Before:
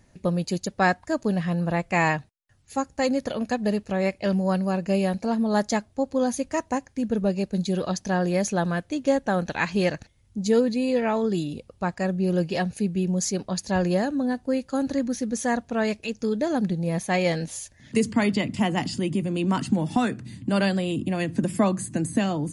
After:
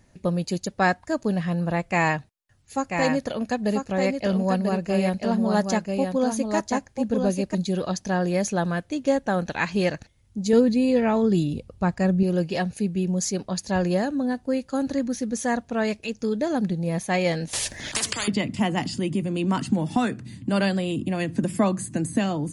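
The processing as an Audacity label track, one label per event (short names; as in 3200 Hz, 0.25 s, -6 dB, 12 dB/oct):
1.840000	7.550000	echo 0.99 s -5 dB
10.530000	12.230000	low shelf 220 Hz +10 dB
17.530000	18.280000	spectral compressor 10:1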